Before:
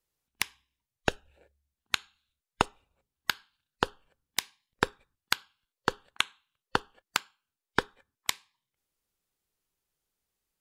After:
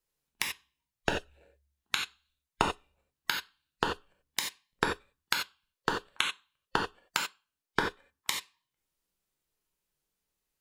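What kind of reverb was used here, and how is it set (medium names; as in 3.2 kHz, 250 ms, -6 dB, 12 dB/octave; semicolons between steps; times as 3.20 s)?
gated-style reverb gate 110 ms flat, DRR 0 dB; trim -3 dB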